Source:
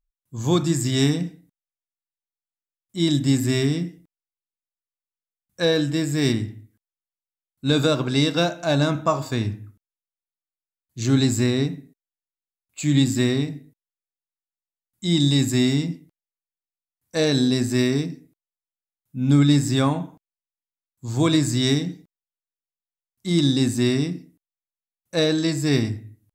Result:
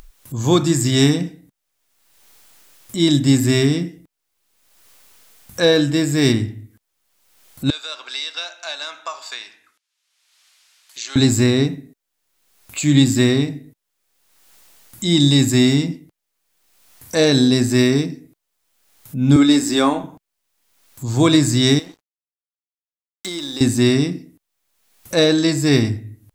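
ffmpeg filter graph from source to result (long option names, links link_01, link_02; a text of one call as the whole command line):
ffmpeg -i in.wav -filter_complex "[0:a]asettb=1/sr,asplit=3[link_01][link_02][link_03];[link_01]atrim=end=7.704[link_04];[link_02]atrim=start=7.7:end=11.16,asetpts=PTS-STARTPTS,afade=type=in:duration=0.004:curve=qsin,afade=type=out:start_time=3.456:duration=0.004:curve=qsin,highpass=630,lowpass=3800,aderivative[link_05];[link_03]atrim=start=11.156[link_06];[link_04][link_05]acrossfade=duration=0.004:curve1=hsin:curve2=qsin[link_07];[link_07][link_06]acrossfade=duration=0.004:curve1=qsin:curve2=hsin,asettb=1/sr,asplit=3[link_08][link_09][link_10];[link_08]atrim=end=19.364[link_11];[link_09]atrim=start=19.36:end=20.04,asetpts=PTS-STARTPTS,afade=type=in:duration=0.004:curve=qsin,afade=type=out:start_time=0.676:duration=0.004:curve=qsin,highpass=frequency=230:width=0.5412,highpass=frequency=230:width=1.3066,aeval=exprs='val(0)+0.00224*(sin(2*PI*60*n/s)+sin(2*PI*2*60*n/s)/2+sin(2*PI*3*60*n/s)/3+sin(2*PI*4*60*n/s)/4+sin(2*PI*5*60*n/s)/5)':channel_layout=same,asplit=2[link_12][link_13];[link_13]adelay=25,volume=-13dB[link_14];[link_12][link_14]amix=inputs=2:normalize=0,atrim=end_sample=29988[link_15];[link_10]atrim=start=20.036[link_16];[link_11][link_15]acrossfade=duration=0.004:curve1=hsin:curve2=qsin[link_17];[link_17][link_16]acrossfade=duration=0.004:curve1=qsin:curve2=hsin,asettb=1/sr,asplit=3[link_18][link_19][link_20];[link_18]atrim=end=21.794[link_21];[link_19]atrim=start=21.79:end=23.61,asetpts=PTS-STARTPTS,afade=type=in:duration=0.004:curve=qsin,afade=type=out:start_time=1.816:duration=0.004:curve=qsin,highpass=430,acompressor=threshold=-36dB:ratio=2.5:attack=3.2:release=140:knee=1:detection=peak,aeval=exprs='sgn(val(0))*max(abs(val(0))-0.00266,0)':channel_layout=same[link_22];[link_20]atrim=start=23.606[link_23];[link_21][link_22]acrossfade=duration=0.004:curve1=hsin:curve2=qsin[link_24];[link_24][link_23]acrossfade=duration=0.004:curve1=qsin:curve2=hsin,acompressor=mode=upward:threshold=-27dB:ratio=2.5,equalizer=frequency=170:width=2.9:gain=-4,volume=6dB" out.wav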